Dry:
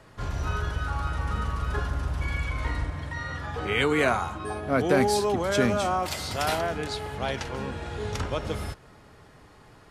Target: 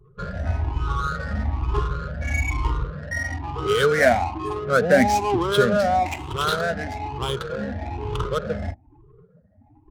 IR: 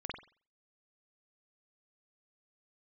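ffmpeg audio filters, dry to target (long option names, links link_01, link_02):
-af "afftfilt=real='re*pow(10,21/40*sin(2*PI*(0.65*log(max(b,1)*sr/1024/100)/log(2)-(1.1)*(pts-256)/sr)))':imag='im*pow(10,21/40*sin(2*PI*(0.65*log(max(b,1)*sr/1024/100)/log(2)-(1.1)*(pts-256)/sr)))':win_size=1024:overlap=0.75,afftdn=noise_reduction=16:noise_floor=-39,adynamicsmooth=sensitivity=4:basefreq=660"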